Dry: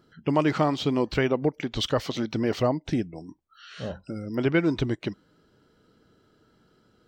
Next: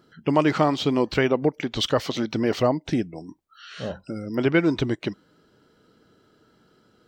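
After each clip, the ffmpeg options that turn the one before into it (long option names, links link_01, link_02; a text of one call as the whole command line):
ffmpeg -i in.wav -af "lowshelf=frequency=93:gain=-8.5,volume=3.5dB" out.wav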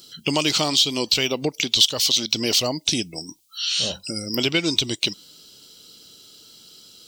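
ffmpeg -i in.wav -af "aexciter=amount=10.7:drive=8.1:freq=2700,acompressor=threshold=-19dB:ratio=2.5" out.wav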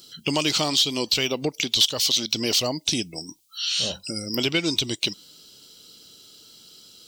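ffmpeg -i in.wav -af "asoftclip=type=tanh:threshold=-6.5dB,volume=-1.5dB" out.wav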